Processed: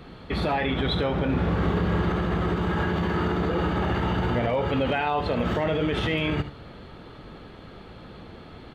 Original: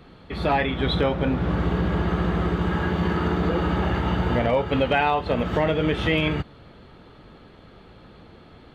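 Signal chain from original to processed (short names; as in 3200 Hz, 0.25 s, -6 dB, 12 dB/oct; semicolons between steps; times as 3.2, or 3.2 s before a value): limiter -21 dBFS, peak gain reduction 10.5 dB; 1.26–2.1 doubler 29 ms -4.5 dB; on a send: echo 75 ms -12.5 dB; on the sum: gain +4 dB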